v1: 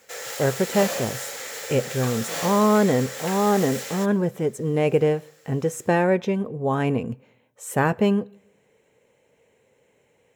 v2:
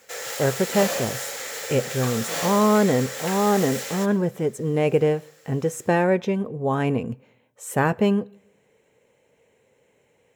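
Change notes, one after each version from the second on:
background: send +8.5 dB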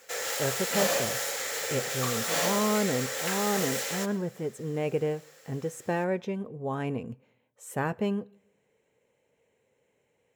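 speech −9.0 dB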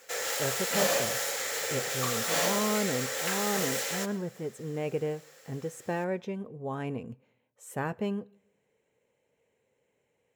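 speech −3.0 dB

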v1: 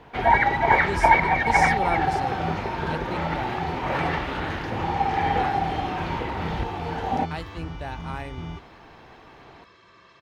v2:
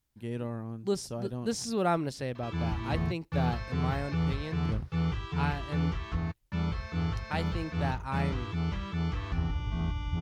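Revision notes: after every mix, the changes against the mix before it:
first sound: muted
second sound: entry +1.75 s
master: add low-shelf EQ 210 Hz +5.5 dB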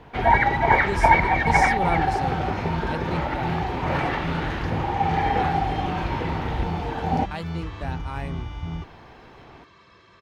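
first sound: unmuted
second sound: entry −1.50 s

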